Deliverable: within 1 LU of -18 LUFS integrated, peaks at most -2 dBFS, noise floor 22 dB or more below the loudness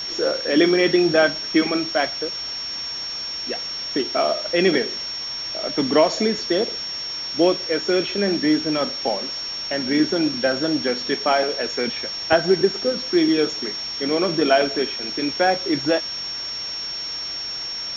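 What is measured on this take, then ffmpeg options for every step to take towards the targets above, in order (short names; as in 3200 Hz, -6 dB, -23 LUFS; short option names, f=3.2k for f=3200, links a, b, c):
steady tone 5500 Hz; tone level -27 dBFS; noise floor -30 dBFS; noise floor target -43 dBFS; loudness -21.0 LUFS; peak -3.0 dBFS; loudness target -18.0 LUFS
-> -af "bandreject=f=5.5k:w=30"
-af "afftdn=nr=13:nf=-30"
-af "volume=3dB,alimiter=limit=-2dB:level=0:latency=1"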